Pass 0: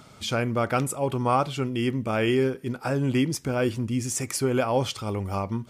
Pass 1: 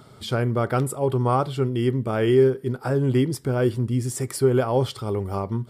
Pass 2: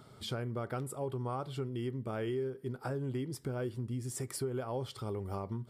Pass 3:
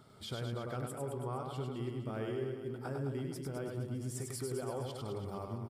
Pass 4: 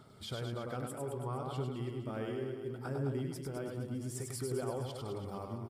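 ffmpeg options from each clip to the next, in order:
-af "equalizer=f=125:t=o:w=0.33:g=7,equalizer=f=400:t=o:w=0.33:g=8,equalizer=f=2500:t=o:w=0.33:g=-10,equalizer=f=6300:t=o:w=0.33:g=-11"
-af "acompressor=threshold=0.0447:ratio=4,volume=0.422"
-af "aecho=1:1:100|210|331|464.1|610.5:0.631|0.398|0.251|0.158|0.1,volume=0.631"
-af "aphaser=in_gain=1:out_gain=1:delay=4:decay=0.24:speed=0.65:type=sinusoidal"

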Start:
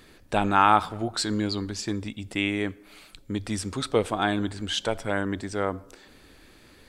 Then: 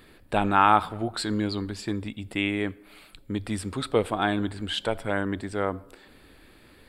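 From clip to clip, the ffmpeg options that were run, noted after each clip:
-af "equalizer=f=6100:t=o:w=0.47:g=-14.5"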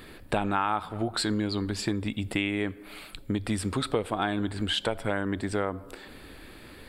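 -af "acompressor=threshold=0.0251:ratio=4,volume=2.11"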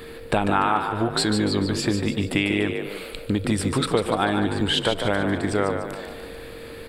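-filter_complex "[0:a]aeval=exprs='val(0)+0.00562*sin(2*PI*460*n/s)':c=same,asplit=7[s0][s1][s2][s3][s4][s5][s6];[s1]adelay=147,afreqshift=45,volume=0.447[s7];[s2]adelay=294,afreqshift=90,volume=0.214[s8];[s3]adelay=441,afreqshift=135,volume=0.102[s9];[s4]adelay=588,afreqshift=180,volume=0.0495[s10];[s5]adelay=735,afreqshift=225,volume=0.0237[s11];[s6]adelay=882,afreqshift=270,volume=0.0114[s12];[s0][s7][s8][s9][s10][s11][s12]amix=inputs=7:normalize=0,volume=1.88"

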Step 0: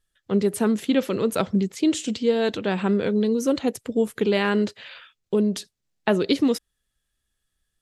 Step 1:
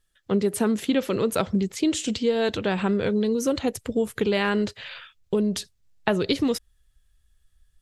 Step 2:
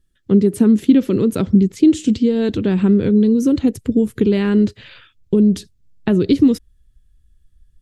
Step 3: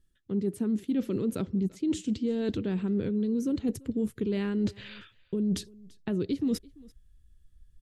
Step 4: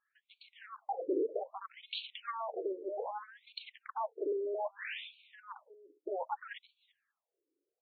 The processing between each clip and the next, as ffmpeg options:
-af "asubboost=boost=6:cutoff=97,acompressor=threshold=0.0631:ratio=2,volume=1.41"
-af "lowshelf=f=450:t=q:w=1.5:g=12,volume=0.75"
-af "areverse,acompressor=threshold=0.0891:ratio=10,areverse,aecho=1:1:339:0.0631,volume=0.596"
-af "aeval=exprs='0.126*(cos(1*acos(clip(val(0)/0.126,-1,1)))-cos(1*PI/2))+0.0501*(cos(3*acos(clip(val(0)/0.126,-1,1)))-cos(3*PI/2))+0.0447*(cos(5*acos(clip(val(0)/0.126,-1,1)))-cos(5*PI/2))':c=same,highpass=270,afftfilt=real='re*between(b*sr/1024,390*pow(3200/390,0.5+0.5*sin(2*PI*0.63*pts/sr))/1.41,390*pow(3200/390,0.5+0.5*sin(2*PI*0.63*pts/sr))*1.41)':imag='im*between(b*sr/1024,390*pow(3200/390,0.5+0.5*sin(2*PI*0.63*pts/sr))/1.41,390*pow(3200/390,0.5+0.5*sin(2*PI*0.63*pts/sr))*1.41)':win_size=1024:overlap=0.75,volume=1.68"

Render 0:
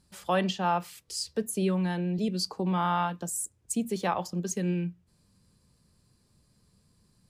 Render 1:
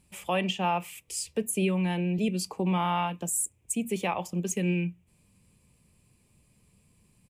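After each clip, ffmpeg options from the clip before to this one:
-af "firequalizer=gain_entry='entry(980,0);entry(1500,-7);entry(2400,11);entry(4300,-9);entry(7600,3)':delay=0.05:min_phase=1,alimiter=limit=0.112:level=0:latency=1:release=262,volume=1.19"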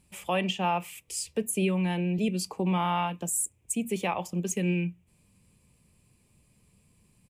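-af anull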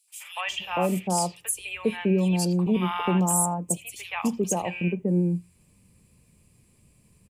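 -filter_complex "[0:a]acrossover=split=940|3300[s0][s1][s2];[s1]adelay=80[s3];[s0]adelay=480[s4];[s4][s3][s2]amix=inputs=3:normalize=0,volume=1.68"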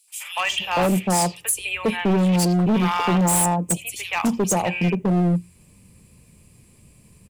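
-af "asoftclip=type=hard:threshold=0.0631,volume=2.51"

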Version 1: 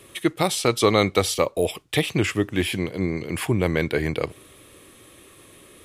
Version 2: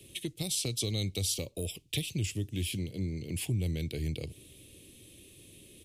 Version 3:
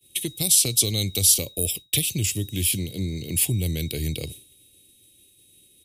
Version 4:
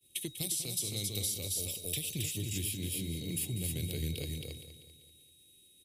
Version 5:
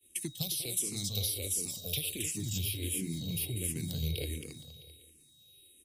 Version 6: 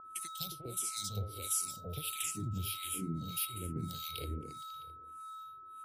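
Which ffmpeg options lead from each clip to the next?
-filter_complex "[0:a]firequalizer=gain_entry='entry(140,0);entry(1200,-29);entry(2600,-3)':delay=0.05:min_phase=1,acrossover=split=110|4100[s0][s1][s2];[s1]acompressor=threshold=0.0178:ratio=5[s3];[s0][s3][s2]amix=inputs=3:normalize=0,volume=0.891"
-af "aeval=exprs='val(0)+0.00178*sin(2*PI*3800*n/s)':c=same,agate=range=0.0224:threshold=0.00891:ratio=3:detection=peak,aemphasis=mode=production:type=50fm,volume=2.11"
-filter_complex "[0:a]asplit=2[s0][s1];[s1]aecho=0:1:270:0.596[s2];[s0][s2]amix=inputs=2:normalize=0,acompressor=threshold=0.0708:ratio=6,asplit=2[s3][s4];[s4]aecho=0:1:195|390|585|780|975:0.266|0.125|0.0588|0.0276|0.013[s5];[s3][s5]amix=inputs=2:normalize=0,volume=0.355"
-filter_complex "[0:a]asplit=2[s0][s1];[s1]afreqshift=-1.4[s2];[s0][s2]amix=inputs=2:normalize=1,volume=1.58"
-filter_complex "[0:a]aeval=exprs='val(0)+0.01*sin(2*PI*1300*n/s)':c=same,acrossover=split=1100[s0][s1];[s0]aeval=exprs='val(0)*(1-1/2+1/2*cos(2*PI*1.6*n/s))':c=same[s2];[s1]aeval=exprs='val(0)*(1-1/2-1/2*cos(2*PI*1.6*n/s))':c=same[s3];[s2][s3]amix=inputs=2:normalize=0"

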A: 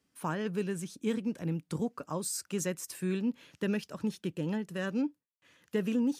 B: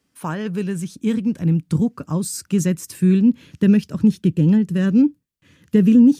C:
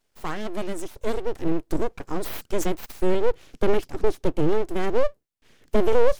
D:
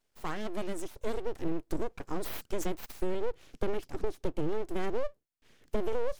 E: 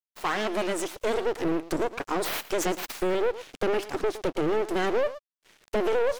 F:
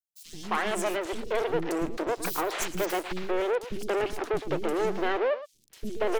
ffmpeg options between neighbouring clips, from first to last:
-af "asubboost=boost=8:cutoff=250,volume=2.24"
-af "aeval=exprs='abs(val(0))':c=same,volume=0.794"
-af "acompressor=threshold=0.112:ratio=6,volume=0.531"
-filter_complex "[0:a]aecho=1:1:113:0.141,asplit=2[s0][s1];[s1]highpass=f=720:p=1,volume=14.1,asoftclip=type=tanh:threshold=0.168[s2];[s0][s2]amix=inputs=2:normalize=0,lowpass=f=5900:p=1,volume=0.501,aeval=exprs='sgn(val(0))*max(abs(val(0))-0.00335,0)':c=same"
-filter_complex "[0:a]acrossover=split=290|4300[s0][s1][s2];[s0]adelay=90[s3];[s1]adelay=270[s4];[s3][s4][s2]amix=inputs=3:normalize=0"

